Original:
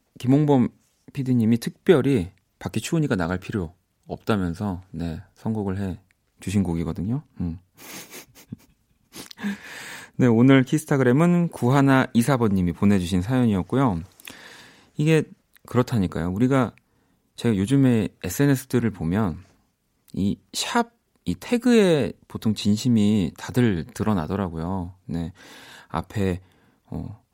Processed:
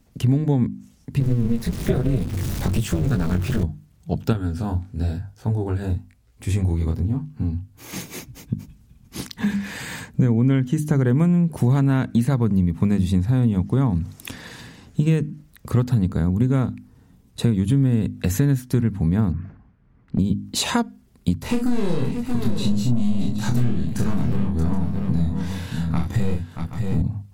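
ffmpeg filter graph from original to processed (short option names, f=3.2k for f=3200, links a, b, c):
-filter_complex "[0:a]asettb=1/sr,asplit=3[a][b][c];[a]atrim=end=1.204[d];[b]atrim=start=1.2:end=3.63,asetpts=PTS-STARTPTS,afade=t=in:d=0.004:c=qsin,afade=t=out:st=2.426:d=0.004:c=qsin,aeval=exprs='val(0)+0.5*0.0596*sgn(val(0))':c=same,flanger=delay=15:depth=7.8:speed=1.1,tremolo=f=240:d=0.919[e];[c]atrim=start=3.626[f];[d][e]acrossfade=d=0.004:c1=hsin:c2=qsin[g];[g][f]acrossfade=d=0.004:c1=qsin:c2=hsin,asettb=1/sr,asplit=3[h][i][j];[h]atrim=end=4.334[k];[i]atrim=start=4.33:end=7.93,asetpts=PTS-STARTPTS,afade=t=in:d=0.004:c=qsin,afade=t=out:st=3.596:d=0.004:c=qsin,equalizer=f=180:t=o:w=0.72:g=-12,flanger=delay=17.5:depth=7.6:speed=1[l];[j]atrim=start=7.926[m];[k][l]acrossfade=d=0.004:c1=hsin:c2=qsin[n];[n][m]acrossfade=d=0.004:c1=qsin:c2=hsin,asettb=1/sr,asplit=3[o][p][q];[o]atrim=end=19.324[r];[p]atrim=start=19.32:end=20.19,asetpts=PTS-STARTPTS,afade=t=in:d=0.004:c=qsin,afade=t=out:st=0.866:d=0.004:c=qsin,lowpass=f=1.6k:t=q:w=1.6,asoftclip=type=hard:threshold=-24.5dB[s];[q]atrim=start=20.186[t];[r][s]acrossfade=d=0.004:c1=hsin:c2=qsin[u];[u][t]acrossfade=d=0.004:c1=qsin:c2=hsin,asettb=1/sr,asplit=3[v][w][x];[v]atrim=end=21.384[y];[w]atrim=start=21.38:end=27.02,asetpts=PTS-STARTPTS,afade=t=in:d=0.004:c=qsin,afade=t=out:st=5.636:d=0.004:c=qsin,aeval=exprs='(tanh(10*val(0)+0.3)-tanh(0.3))/10':c=same,asplit=2[z][aa];[aa]adelay=25,volume=-4dB[ab];[z][ab]amix=inputs=2:normalize=0,atrim=end_sample=248724,aecho=1:1:40|629|774:0.596|0.335|0.2,atrim=end_sample=248724[ac];[x]atrim=start=27.016[ad];[y][ac]acrossfade=d=0.004:c1=hsin:c2=qsin[ae];[ae][ad]acrossfade=d=0.004:c1=qsin:c2=hsin,bass=f=250:g=14,treble=f=4k:g=1,bandreject=f=50:t=h:w=6,bandreject=f=100:t=h:w=6,bandreject=f=150:t=h:w=6,bandreject=f=200:t=h:w=6,bandreject=f=250:t=h:w=6,bandreject=f=300:t=h:w=6,acompressor=threshold=-21dB:ratio=4,volume=3.5dB"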